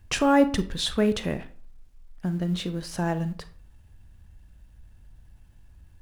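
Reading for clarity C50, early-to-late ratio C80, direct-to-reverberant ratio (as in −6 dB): 15.0 dB, 19.5 dB, 11.5 dB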